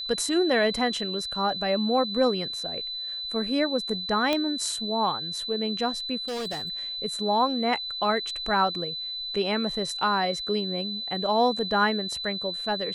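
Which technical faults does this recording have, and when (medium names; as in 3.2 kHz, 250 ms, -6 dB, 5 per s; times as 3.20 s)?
whine 4 kHz -31 dBFS
4.33 s: pop -11 dBFS
6.28–6.81 s: clipped -29 dBFS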